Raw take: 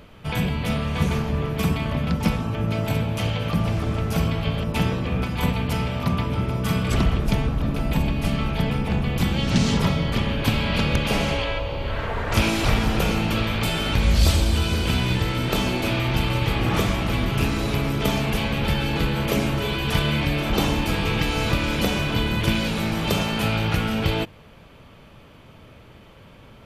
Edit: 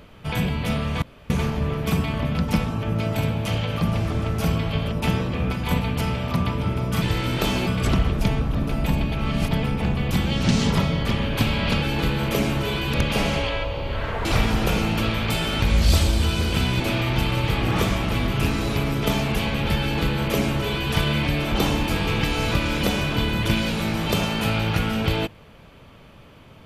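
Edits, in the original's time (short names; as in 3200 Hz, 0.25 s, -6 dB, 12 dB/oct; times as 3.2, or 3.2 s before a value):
1.02 insert room tone 0.28 s
8.19–8.58 reverse
12.2–12.58 cut
15.13–15.78 move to 6.74
18.79–19.91 copy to 10.89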